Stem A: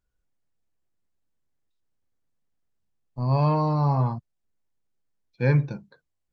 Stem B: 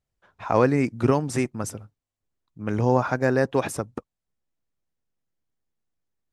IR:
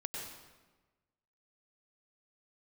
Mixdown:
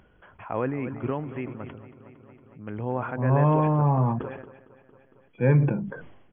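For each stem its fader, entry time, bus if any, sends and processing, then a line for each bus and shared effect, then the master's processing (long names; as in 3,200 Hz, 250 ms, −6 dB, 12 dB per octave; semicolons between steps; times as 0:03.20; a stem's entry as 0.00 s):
0.0 dB, 0.00 s, no send, no echo send, Bessel high-pass filter 250 Hz, order 2; spectral tilt −3 dB per octave
−9.5 dB, 0.00 s, no send, echo send −15.5 dB, no processing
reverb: not used
echo: repeating echo 229 ms, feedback 53%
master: upward compression, threshold −39 dBFS; linear-phase brick-wall low-pass 3,400 Hz; level that may fall only so fast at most 56 dB per second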